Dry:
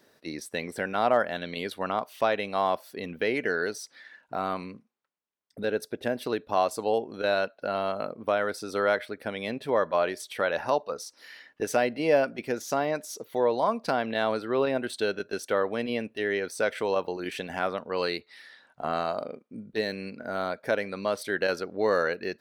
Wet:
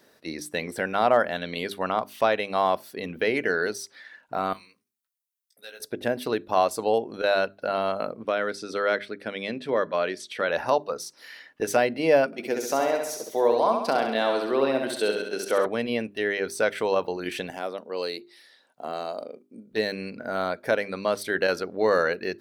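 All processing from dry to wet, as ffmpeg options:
-filter_complex "[0:a]asettb=1/sr,asplit=3[s0][s1][s2];[s0]atrim=end=4.534[s3];[s1]atrim=start=4.53:end=5.8,asetpts=PTS-STARTPTS,afade=t=in:d=0.004:c=qsin,afade=t=out:st=1.266:d=0.004:c=qsin,aderivative,asplit=2[s4][s5];[s5]adelay=17,volume=0.596[s6];[s4][s6]amix=inputs=2:normalize=0,atrim=end_sample=56007,bandreject=f=113.6:t=h:w=4,bandreject=f=227.2:t=h:w=4,bandreject=f=340.8:t=h:w=4[s7];[s2]atrim=start=5.796[s8];[s3][s7]acrossfade=d=0.004:c1=hsin:c2=qsin[s9];[s9][s8]acrossfade=d=0.004:c1=qsin:c2=hsin,asettb=1/sr,asplit=3[s10][s11][s12];[s10]atrim=end=8.234[s13];[s11]atrim=start=8.23:end=10.49,asetpts=PTS-STARTPTS,afade=t=in:d=0.004:c=qsin,afade=t=out:st=2.256:d=0.004:c=qsin,highpass=140,lowpass=6700,equalizer=f=840:t=o:w=0.95:g=-7[s14];[s12]atrim=start=10.486[s15];[s13][s14]acrossfade=d=0.004:c1=hsin:c2=qsin[s16];[s16][s15]acrossfade=d=0.004:c1=qsin:c2=hsin,asettb=1/sr,asplit=3[s17][s18][s19];[s17]atrim=end=12.264[s20];[s18]atrim=start=12.26:end=15.66,asetpts=PTS-STARTPTS,afade=t=in:d=0.004:c=qsin,afade=t=out:st=3.396:d=0.004:c=qsin,highpass=230,equalizer=f=1600:w=1.4:g=-3.5,aecho=1:1:67|134|201|268|335|402|469:0.562|0.304|0.164|0.0885|0.0478|0.0258|0.0139,atrim=end_sample=149940[s21];[s19]atrim=start=15.656[s22];[s20][s21]acrossfade=d=0.004:c1=hsin:c2=qsin[s23];[s23][s22]acrossfade=d=0.004:c1=qsin:c2=hsin,asettb=1/sr,asplit=3[s24][s25][s26];[s24]atrim=end=17.504[s27];[s25]atrim=start=17.5:end=19.71,asetpts=PTS-STARTPTS,afade=t=in:d=0.004:c=qsin,afade=t=out:st=2.206:d=0.004:c=qsin,highpass=300,equalizer=f=1500:t=o:w=2.2:g=-11[s28];[s26]atrim=start=19.706[s29];[s27][s28]acrossfade=d=0.004:c1=hsin:c2=qsin[s30];[s30][s29]acrossfade=d=0.004:c1=qsin:c2=hsin,equalizer=f=12000:w=1.5:g=2,bandreject=f=50:t=h:w=6,bandreject=f=100:t=h:w=6,bandreject=f=150:t=h:w=6,bandreject=f=200:t=h:w=6,bandreject=f=250:t=h:w=6,bandreject=f=300:t=h:w=6,bandreject=f=350:t=h:w=6,bandreject=f=400:t=h:w=6,volume=1.41"

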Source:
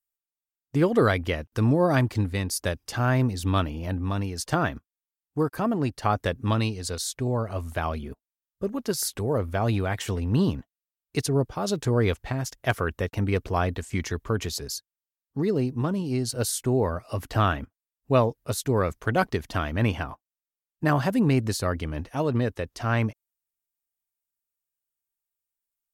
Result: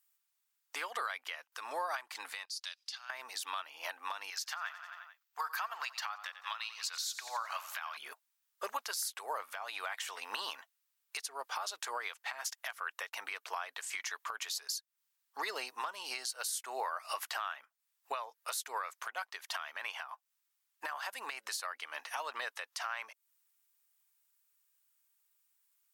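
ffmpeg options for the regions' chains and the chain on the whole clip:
-filter_complex "[0:a]asettb=1/sr,asplit=3[s0][s1][s2];[s0]atrim=end=2.454[s3];[s1]atrim=start=2.45:end=3.1,asetpts=PTS-STARTPTS,afade=t=in:d=0.004:c=qsin,afade=t=out:st=0.646:d=0.004:c=qsin,acompressor=threshold=0.0224:ratio=4:attack=3.2:release=140:knee=1:detection=peak,bandpass=f=4300:t=q:w=2.6[s4];[s2]atrim=start=3.096[s5];[s3][s4]acrossfade=d=0.004:c1=hsin:c2=qsin[s6];[s6][s5]acrossfade=d=0.004:c1=qsin:c2=hsin,asettb=1/sr,asplit=3[s7][s8][s9];[s7]atrim=end=4.304[s10];[s8]atrim=start=4.3:end=7.97,asetpts=PTS-STARTPTS,afade=t=in:d=0.004:c=qsin,afade=t=out:st=3.666:d=0.004:c=qsin,highpass=1100,equalizer=f=9300:t=o:w=0.4:g=-12.5,aecho=1:1:89|178|267|356|445:0.15|0.0823|0.0453|0.0249|0.0137,atrim=end_sample=161847[s11];[s9]atrim=start=7.966[s12];[s10][s11]acrossfade=d=0.004:c1=hsin:c2=qsin[s13];[s13][s12]acrossfade=d=0.004:c1=qsin:c2=hsin,highpass=f=910:w=0.5412,highpass=f=910:w=1.3066,acompressor=threshold=0.00631:ratio=4,alimiter=level_in=4.73:limit=0.0631:level=0:latency=1:release=332,volume=0.211,volume=3.76"

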